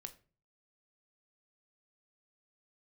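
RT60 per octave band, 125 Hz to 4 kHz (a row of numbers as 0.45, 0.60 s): 0.65, 0.50, 0.40, 0.35, 0.30, 0.25 s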